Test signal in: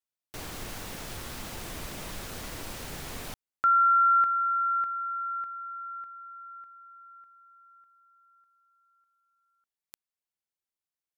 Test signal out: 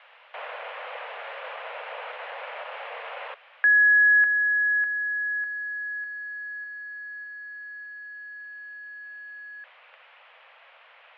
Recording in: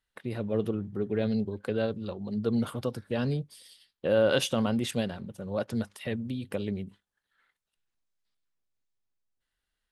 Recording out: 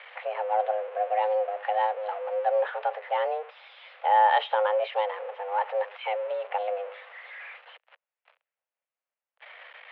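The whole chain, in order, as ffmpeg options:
-af "aeval=exprs='val(0)+0.5*0.0126*sgn(val(0))':c=same,highpass=f=190:t=q:w=0.5412,highpass=f=190:t=q:w=1.307,lowpass=f=2600:t=q:w=0.5176,lowpass=f=2600:t=q:w=0.7071,lowpass=f=2600:t=q:w=1.932,afreqshift=310,volume=1.41"

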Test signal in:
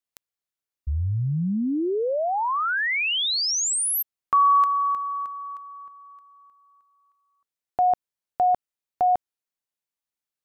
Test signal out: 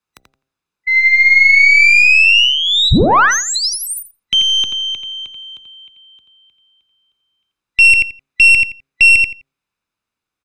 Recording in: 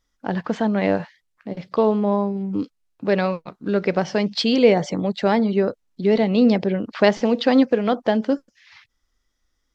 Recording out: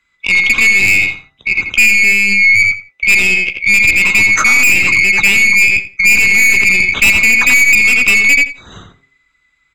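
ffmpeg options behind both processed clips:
-filter_complex "[0:a]afftfilt=real='real(if(lt(b,920),b+92*(1-2*mod(floor(b/92),2)),b),0)':imag='imag(if(lt(b,920),b+92*(1-2*mod(floor(b/92),2)),b),0)':win_size=2048:overlap=0.75,aemphasis=mode=reproduction:type=75kf,aecho=1:1:0.8:0.4,bandreject=f=64.48:t=h:w=4,bandreject=f=128.96:t=h:w=4,bandreject=f=193.44:t=h:w=4,bandreject=f=257.92:t=h:w=4,bandreject=f=322.4:t=h:w=4,bandreject=f=386.88:t=h:w=4,bandreject=f=451.36:t=h:w=4,bandreject=f=515.84:t=h:w=4,bandreject=f=580.32:t=h:w=4,bandreject=f=644.8:t=h:w=4,bandreject=f=709.28:t=h:w=4,bandreject=f=773.76:t=h:w=4,adynamicequalizer=threshold=0.0251:dfrequency=2300:dqfactor=2.2:tfrequency=2300:tqfactor=2.2:attack=5:release=100:ratio=0.4:range=4:mode=boostabove:tftype=bell,afreqshift=13,aeval=exprs='(tanh(5.62*val(0)+0.35)-tanh(0.35))/5.62':c=same,asplit=2[s0][s1];[s1]adelay=85,lowpass=f=3900:p=1,volume=0.531,asplit=2[s2][s3];[s3]adelay=85,lowpass=f=3900:p=1,volume=0.21,asplit=2[s4][s5];[s5]adelay=85,lowpass=f=3900:p=1,volume=0.21[s6];[s0][s2][s4][s6]amix=inputs=4:normalize=0,alimiter=level_in=6.68:limit=0.891:release=50:level=0:latency=1,volume=0.891"

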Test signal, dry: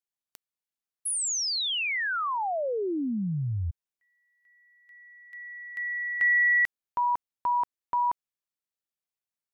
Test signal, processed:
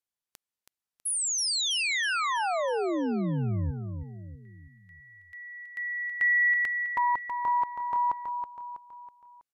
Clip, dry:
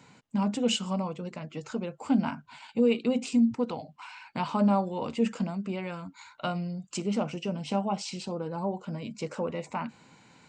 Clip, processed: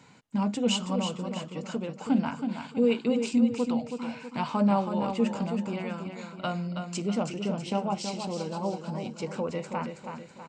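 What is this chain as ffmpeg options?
-af "aecho=1:1:324|648|972|1296|1620:0.447|0.201|0.0905|0.0407|0.0183,aresample=32000,aresample=44100"

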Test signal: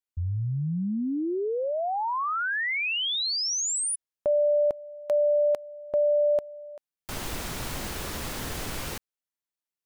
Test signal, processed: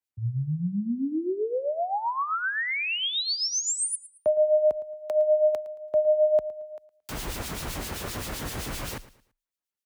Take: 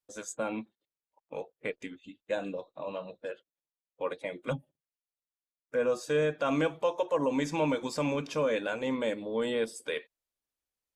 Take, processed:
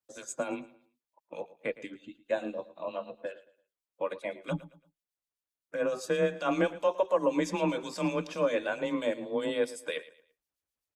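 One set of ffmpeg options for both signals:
-filter_complex "[0:a]acrossover=split=2300[s0][s1];[s0]aeval=exprs='val(0)*(1-0.7/2+0.7/2*cos(2*PI*7.7*n/s))':c=same[s2];[s1]aeval=exprs='val(0)*(1-0.7/2-0.7/2*cos(2*PI*7.7*n/s))':c=same[s3];[s2][s3]amix=inputs=2:normalize=0,aecho=1:1:112|224|336:0.133|0.0427|0.0137,afreqshift=24,volume=1.41"

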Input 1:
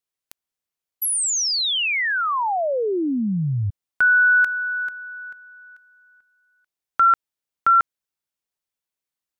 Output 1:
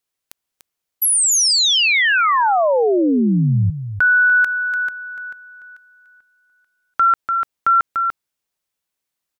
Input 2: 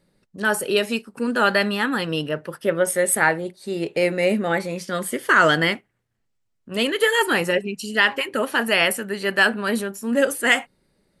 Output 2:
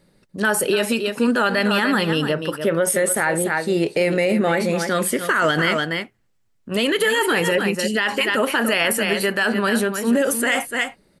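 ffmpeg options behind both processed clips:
-filter_complex "[0:a]asplit=2[s0][s1];[s1]aecho=0:1:293:0.282[s2];[s0][s2]amix=inputs=2:normalize=0,alimiter=level_in=5.96:limit=0.891:release=50:level=0:latency=1,volume=0.355"

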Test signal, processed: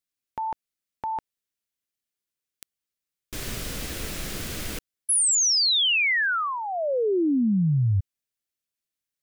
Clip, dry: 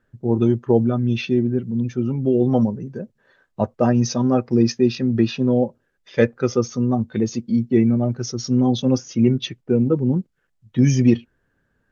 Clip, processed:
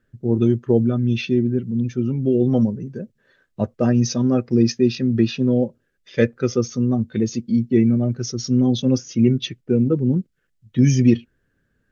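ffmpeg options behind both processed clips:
-af "equalizer=f=880:w=1.4:g=-10,volume=1.12"

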